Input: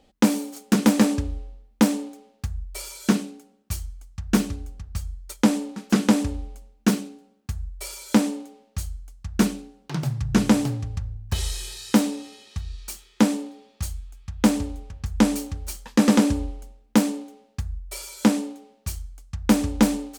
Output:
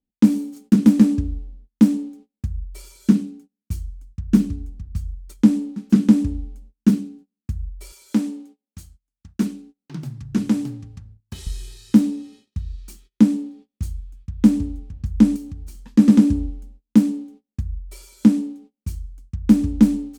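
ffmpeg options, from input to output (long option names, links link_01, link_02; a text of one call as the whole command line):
ffmpeg -i in.wav -filter_complex "[0:a]asettb=1/sr,asplit=3[link_01][link_02][link_03];[link_01]atrim=end=7.924[link_04];[link_02]atrim=start=7.92:end=11.47,asetpts=PTS-STARTPTS,afade=type=in:duration=0.004:curve=qsin,afade=type=out:start_time=3.546:duration=0.004:curve=qsin,highpass=frequency=410:poles=1[link_05];[link_03]atrim=start=11.466[link_06];[link_04][link_05]acrossfade=duration=0.004:curve1=hsin:curve2=qsin[link_07];[link_07][link_06]acrossfade=duration=0.004:curve1=qsin:curve2=hsin,asettb=1/sr,asplit=3[link_08][link_09][link_10];[link_08]atrim=end=15.364[link_11];[link_09]atrim=start=15.36:end=15.83,asetpts=PTS-STARTPTS,afade=type=in:duration=0.004:curve=qsin,afade=type=out:start_time=0.466:duration=0.004:curve=qsin,acompressor=threshold=-36dB:ratio=2:attack=3.2:release=140:knee=1:detection=peak[link_12];[link_10]atrim=start=15.826[link_13];[link_11][link_12]acrossfade=duration=0.004:curve1=hsin:curve2=qsin[link_14];[link_14][link_13]acrossfade=duration=0.004:curve1=qsin:curve2=hsin,agate=range=-27dB:threshold=-47dB:ratio=16:detection=peak,lowshelf=frequency=390:width_type=q:width=1.5:gain=12.5,volume=-9.5dB" out.wav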